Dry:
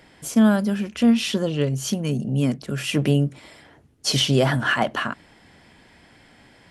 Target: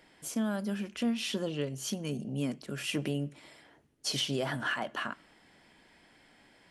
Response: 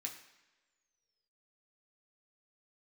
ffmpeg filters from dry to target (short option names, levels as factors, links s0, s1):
-filter_complex "[0:a]equalizer=f=87:w=0.93:g=-8,alimiter=limit=0.211:level=0:latency=1:release=241,asplit=2[s0][s1];[1:a]atrim=start_sample=2205,asetrate=52920,aresample=44100[s2];[s1][s2]afir=irnorm=-1:irlink=0,volume=0.299[s3];[s0][s3]amix=inputs=2:normalize=0,volume=0.355"